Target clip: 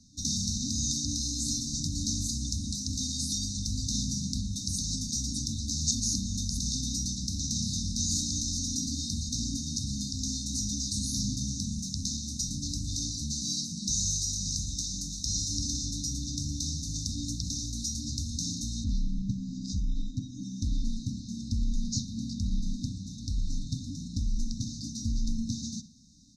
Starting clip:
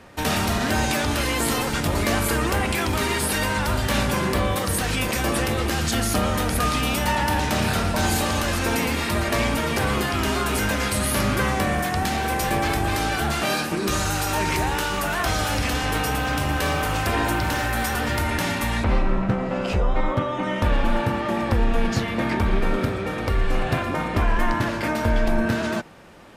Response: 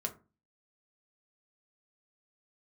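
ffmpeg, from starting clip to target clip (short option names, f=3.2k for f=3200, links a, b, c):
-filter_complex "[0:a]afftfilt=real='re*(1-between(b*sr/4096,300,3600))':imag='im*(1-between(b*sr/4096,300,3600))':win_size=4096:overlap=0.75,lowpass=f=6.1k:t=q:w=6,asplit=2[a][b];[b]adelay=63,lowpass=f=4.4k:p=1,volume=-14dB,asplit=2[c][d];[d]adelay=63,lowpass=f=4.4k:p=1,volume=0.51,asplit=2[e][f];[f]adelay=63,lowpass=f=4.4k:p=1,volume=0.51,asplit=2[g][h];[h]adelay=63,lowpass=f=4.4k:p=1,volume=0.51,asplit=2[i][j];[j]adelay=63,lowpass=f=4.4k:p=1,volume=0.51[k];[a][c][e][g][i][k]amix=inputs=6:normalize=0,volume=-8.5dB"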